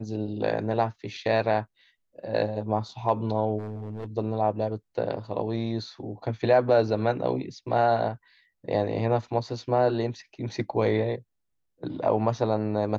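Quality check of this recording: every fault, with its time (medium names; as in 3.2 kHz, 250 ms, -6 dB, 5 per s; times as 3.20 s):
3.58–4.06 s: clipped -30.5 dBFS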